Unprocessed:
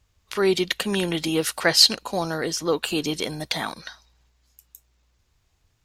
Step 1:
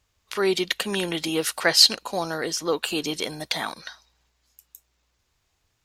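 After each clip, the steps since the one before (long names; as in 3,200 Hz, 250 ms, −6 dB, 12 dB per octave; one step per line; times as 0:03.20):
low-shelf EQ 220 Hz −8.5 dB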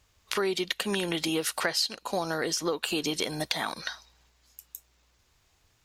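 downward compressor 8 to 1, threshold −30 dBFS, peak gain reduction 19 dB
level +4.5 dB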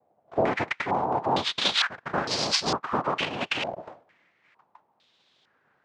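cochlear-implant simulation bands 2
low-pass on a step sequencer 2.2 Hz 680–4,800 Hz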